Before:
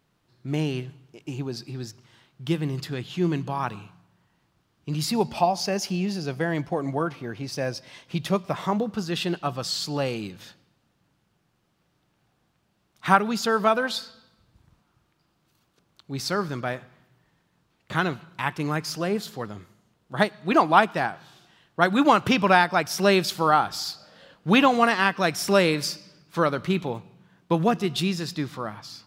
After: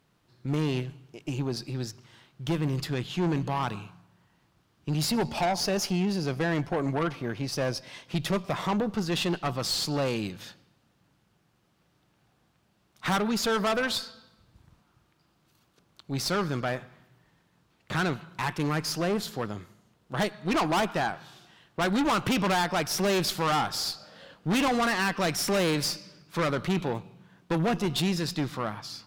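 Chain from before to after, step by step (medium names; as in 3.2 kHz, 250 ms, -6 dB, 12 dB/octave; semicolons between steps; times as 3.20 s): valve stage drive 26 dB, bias 0.5; trim +3.5 dB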